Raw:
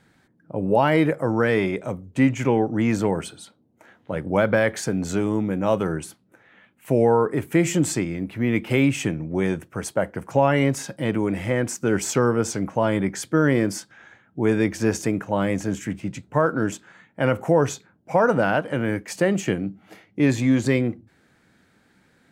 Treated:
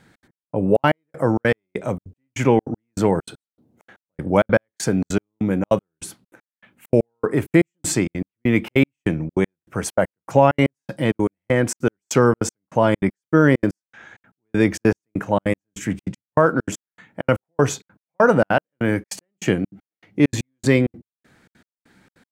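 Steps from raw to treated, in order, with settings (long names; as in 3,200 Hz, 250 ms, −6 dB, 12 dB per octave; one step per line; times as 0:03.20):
gate pattern "xx.x...x" 197 BPM −60 dB
level +4.5 dB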